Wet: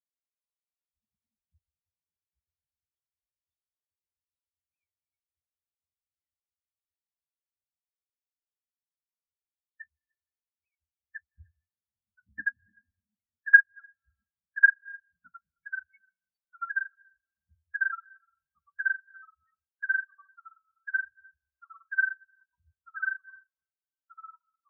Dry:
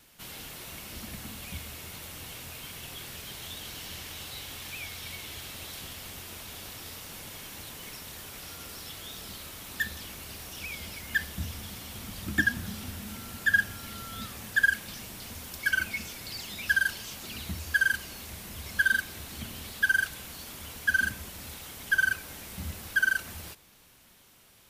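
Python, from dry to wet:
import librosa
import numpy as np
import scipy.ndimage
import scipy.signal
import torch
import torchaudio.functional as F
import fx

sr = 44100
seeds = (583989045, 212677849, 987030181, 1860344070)

p1 = fx.rider(x, sr, range_db=4, speed_s=2.0)
p2 = x + (p1 * 10.0 ** (1.0 / 20.0))
p3 = fx.echo_pitch(p2, sr, ms=520, semitones=-3, count=3, db_per_echo=-6.0)
p4 = p3 + fx.echo_single(p3, sr, ms=301, db=-12.0, dry=0)
p5 = fx.rev_freeverb(p4, sr, rt60_s=3.4, hf_ratio=0.55, predelay_ms=85, drr_db=8.0)
y = fx.spectral_expand(p5, sr, expansion=4.0)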